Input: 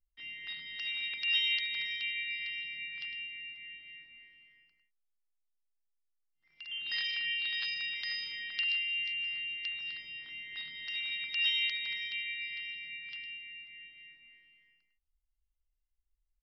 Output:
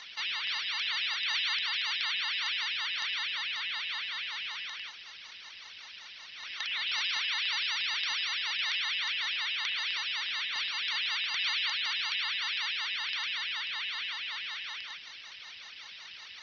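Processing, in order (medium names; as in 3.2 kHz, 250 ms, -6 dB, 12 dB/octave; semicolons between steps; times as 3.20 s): spectral levelling over time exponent 0.2; ring modulator with a swept carrier 560 Hz, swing 85%, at 5.3 Hz; trim -1.5 dB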